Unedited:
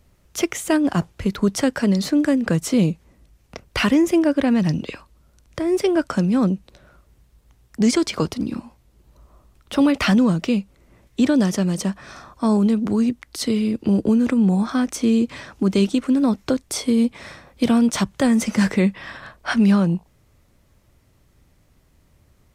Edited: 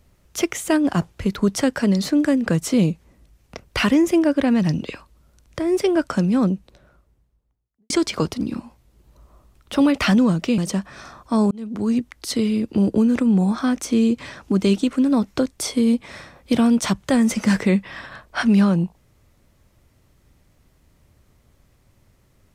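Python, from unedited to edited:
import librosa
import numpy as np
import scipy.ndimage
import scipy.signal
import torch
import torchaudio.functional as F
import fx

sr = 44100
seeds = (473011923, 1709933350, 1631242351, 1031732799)

y = fx.studio_fade_out(x, sr, start_s=6.29, length_s=1.61)
y = fx.edit(y, sr, fx.cut(start_s=10.58, length_s=1.11),
    fx.fade_in_span(start_s=12.62, length_s=0.46), tone=tone)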